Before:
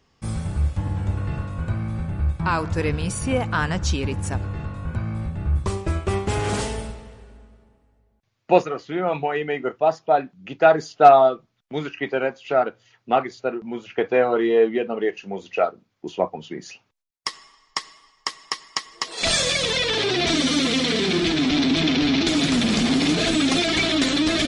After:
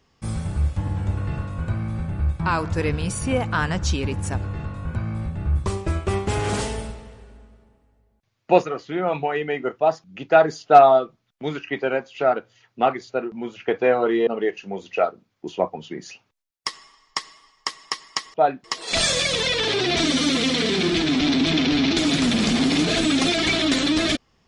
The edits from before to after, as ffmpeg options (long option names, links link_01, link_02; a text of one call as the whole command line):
ffmpeg -i in.wav -filter_complex "[0:a]asplit=5[link_01][link_02][link_03][link_04][link_05];[link_01]atrim=end=10.042[link_06];[link_02]atrim=start=10.338:end=14.572[link_07];[link_03]atrim=start=14.868:end=18.942[link_08];[link_04]atrim=start=10.038:end=10.342[link_09];[link_05]atrim=start=18.938[link_10];[link_06][link_07]acrossfade=duration=0.004:curve1=hsin:curve2=hsin[link_11];[link_11][link_08]acrossfade=duration=0.004:curve1=hsin:curve2=hsin[link_12];[link_12][link_09]acrossfade=duration=0.004:curve1=hsin:curve2=hsin[link_13];[link_13][link_10]acrossfade=duration=0.004:curve1=hsin:curve2=hsin" out.wav